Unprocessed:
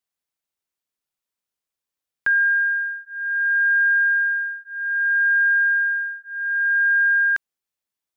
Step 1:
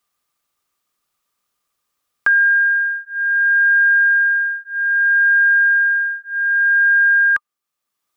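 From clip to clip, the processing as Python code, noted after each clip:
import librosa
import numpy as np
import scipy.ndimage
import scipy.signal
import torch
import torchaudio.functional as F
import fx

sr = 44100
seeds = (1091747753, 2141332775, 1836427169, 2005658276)

y = fx.small_body(x, sr, hz=(1200.0,), ring_ms=45, db=16)
y = fx.dynamic_eq(y, sr, hz=1700.0, q=0.79, threshold_db=-31.0, ratio=4.0, max_db=4)
y = fx.band_squash(y, sr, depth_pct=40)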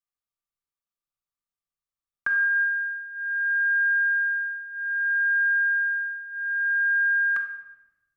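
y = fx.room_shoebox(x, sr, seeds[0], volume_m3=1300.0, walls='mixed', distance_m=1.1)
y = fx.band_widen(y, sr, depth_pct=40)
y = y * 10.0 ** (-8.0 / 20.0)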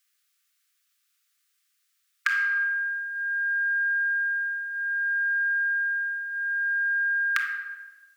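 y = scipy.signal.sosfilt(scipy.signal.butter(8, 1400.0, 'highpass', fs=sr, output='sos'), x)
y = fx.spectral_comp(y, sr, ratio=2.0)
y = y * 10.0 ** (8.5 / 20.0)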